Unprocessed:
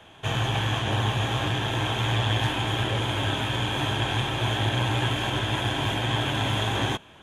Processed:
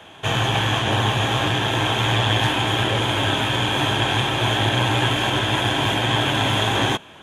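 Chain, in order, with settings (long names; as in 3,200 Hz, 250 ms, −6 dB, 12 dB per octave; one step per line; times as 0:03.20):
low-shelf EQ 87 Hz −10.5 dB
level +7 dB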